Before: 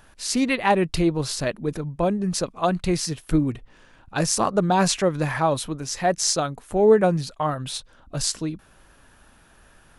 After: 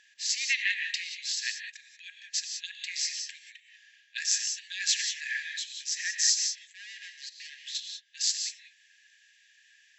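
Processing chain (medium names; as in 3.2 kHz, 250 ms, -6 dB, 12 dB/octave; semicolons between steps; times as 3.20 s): 6.37–7.75 s: valve stage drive 32 dB, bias 0.5; brick-wall FIR band-pass 1.6–7.8 kHz; gated-style reverb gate 210 ms rising, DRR 5 dB; trim -1 dB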